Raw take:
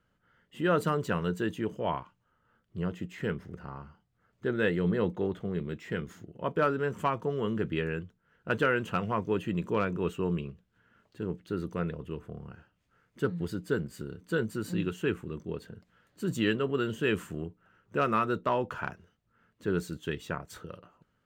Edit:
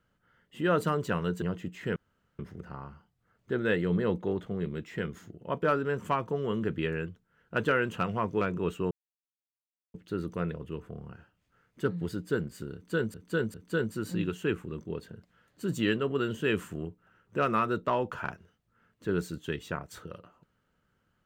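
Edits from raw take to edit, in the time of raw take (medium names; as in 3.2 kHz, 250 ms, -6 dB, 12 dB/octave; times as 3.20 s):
1.42–2.79 s: delete
3.33 s: insert room tone 0.43 s
9.35–9.80 s: delete
10.30–11.33 s: mute
14.13–14.53 s: loop, 3 plays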